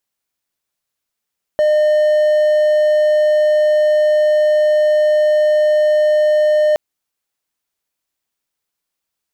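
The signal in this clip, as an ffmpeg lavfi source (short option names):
-f lavfi -i "aevalsrc='0.398*(1-4*abs(mod(607*t+0.25,1)-0.5))':d=5.17:s=44100"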